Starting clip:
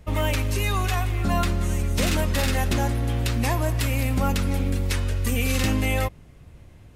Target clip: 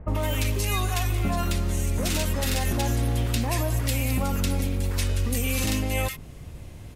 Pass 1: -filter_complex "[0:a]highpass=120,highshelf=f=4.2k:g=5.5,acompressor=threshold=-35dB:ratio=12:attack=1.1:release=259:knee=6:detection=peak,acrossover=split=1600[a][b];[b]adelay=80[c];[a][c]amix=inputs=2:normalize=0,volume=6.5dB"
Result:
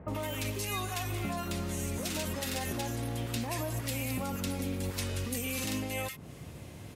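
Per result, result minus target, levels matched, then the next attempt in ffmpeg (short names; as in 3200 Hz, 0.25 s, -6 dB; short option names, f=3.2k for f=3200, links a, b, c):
compressor: peak gain reduction +8.5 dB; 125 Hz band -2.0 dB
-filter_complex "[0:a]highpass=120,highshelf=f=4.2k:g=5.5,acompressor=threshold=-25dB:ratio=12:attack=1.1:release=259:knee=6:detection=peak,acrossover=split=1600[a][b];[b]adelay=80[c];[a][c]amix=inputs=2:normalize=0,volume=6.5dB"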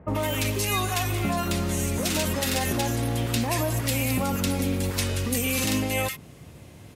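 125 Hz band -2.5 dB
-filter_complex "[0:a]highshelf=f=4.2k:g=5.5,acompressor=threshold=-25dB:ratio=12:attack=1.1:release=259:knee=6:detection=peak,acrossover=split=1600[a][b];[b]adelay=80[c];[a][c]amix=inputs=2:normalize=0,volume=6.5dB"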